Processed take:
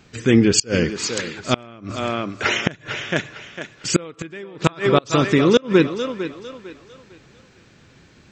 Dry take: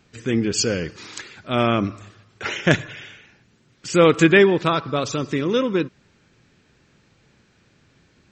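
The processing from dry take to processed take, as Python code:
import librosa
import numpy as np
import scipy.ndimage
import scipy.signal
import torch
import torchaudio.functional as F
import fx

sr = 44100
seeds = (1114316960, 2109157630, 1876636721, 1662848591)

y = fx.echo_thinned(x, sr, ms=452, feedback_pct=34, hz=220.0, wet_db=-11)
y = fx.gate_flip(y, sr, shuts_db=-9.0, range_db=-29)
y = F.gain(torch.from_numpy(y), 7.0).numpy()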